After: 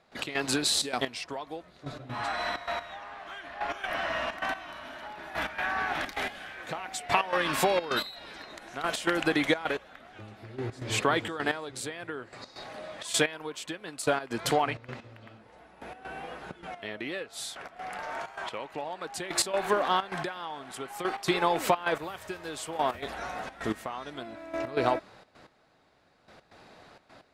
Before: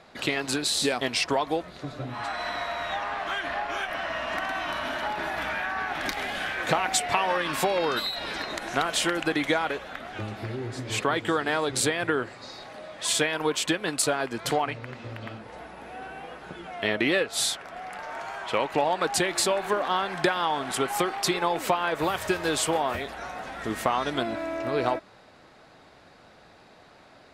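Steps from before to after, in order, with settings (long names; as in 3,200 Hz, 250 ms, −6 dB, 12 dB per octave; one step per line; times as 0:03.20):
gate pattern ".x.xxxx.x......" 129 BPM −12 dB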